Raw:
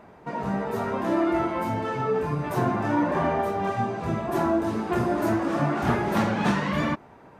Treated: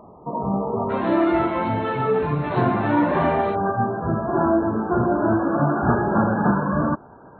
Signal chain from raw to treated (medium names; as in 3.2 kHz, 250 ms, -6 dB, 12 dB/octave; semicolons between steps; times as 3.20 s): brick-wall FIR low-pass 1.3 kHz, from 0.89 s 4.3 kHz, from 3.54 s 1.7 kHz; trim +4.5 dB